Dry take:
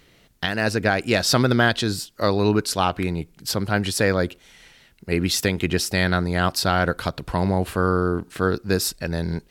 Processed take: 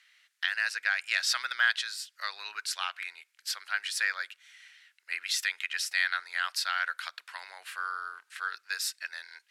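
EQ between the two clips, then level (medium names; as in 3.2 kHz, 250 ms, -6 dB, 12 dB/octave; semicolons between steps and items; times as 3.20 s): ladder high-pass 1.4 kHz, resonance 40%; low-pass 11 kHz 12 dB/octave; +1.0 dB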